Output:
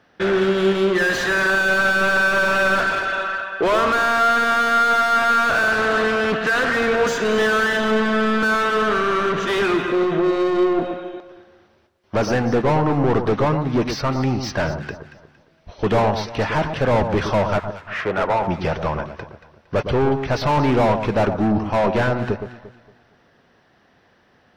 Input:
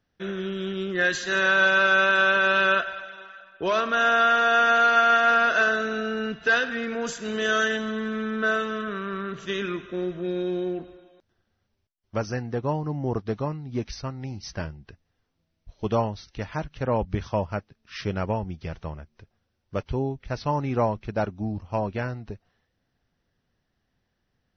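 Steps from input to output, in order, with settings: 17.58–18.48 three-band isolator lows -13 dB, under 520 Hz, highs -23 dB, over 2100 Hz; overdrive pedal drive 33 dB, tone 1200 Hz, clips at -9.5 dBFS; echo with dull and thin repeats by turns 0.115 s, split 1300 Hz, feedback 55%, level -7.5 dB; 5.71–6.73 Doppler distortion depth 0.32 ms

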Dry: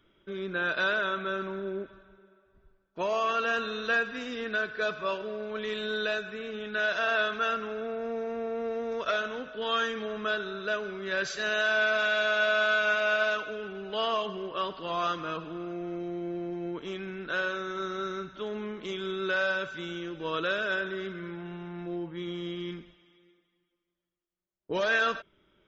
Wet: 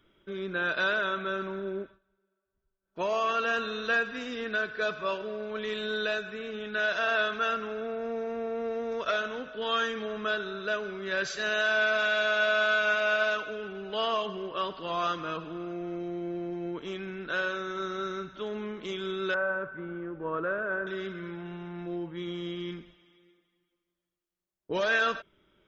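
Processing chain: 1.81–2.99 dip -19 dB, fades 0.18 s; 19.34–20.87 LPF 1600 Hz 24 dB/oct

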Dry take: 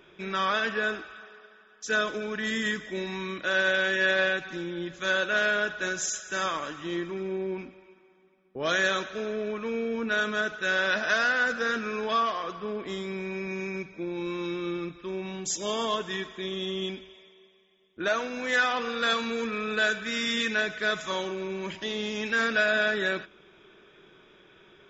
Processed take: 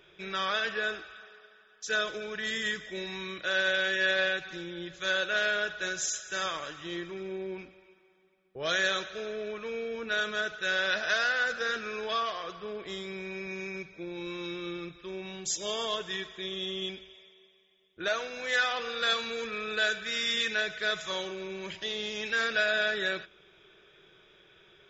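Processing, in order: fifteen-band EQ 250 Hz -12 dB, 1000 Hz -5 dB, 4000 Hz +4 dB; gain -2 dB

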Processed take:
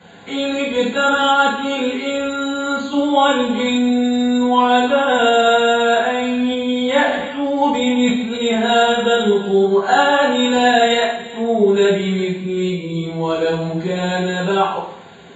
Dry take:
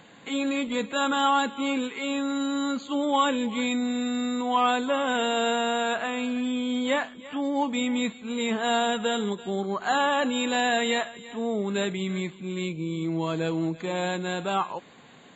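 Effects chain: notch 1200 Hz, Q 6.7; reverb RT60 0.70 s, pre-delay 3 ms, DRR -12 dB; 6.39–8.46 sustainer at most 46 dB/s; gain -8.5 dB

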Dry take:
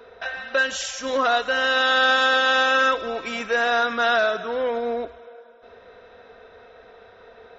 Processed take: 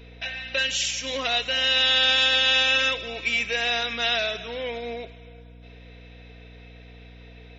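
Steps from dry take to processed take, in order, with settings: resonant high shelf 1800 Hz +9 dB, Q 3; hum 60 Hz, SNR 20 dB; gain -7 dB

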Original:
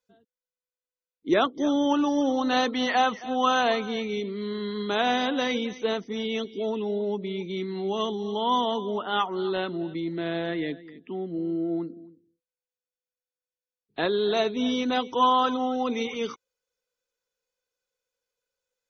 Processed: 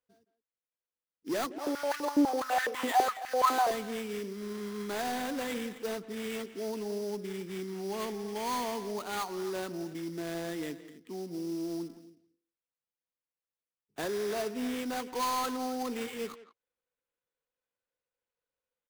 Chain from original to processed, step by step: median filter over 5 samples; sample-rate reducer 5400 Hz, jitter 20%; soft clip -20 dBFS, distortion -13 dB; speakerphone echo 0.17 s, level -13 dB; 1.5–3.71 stepped high-pass 12 Hz 310–1700 Hz; gain -6.5 dB

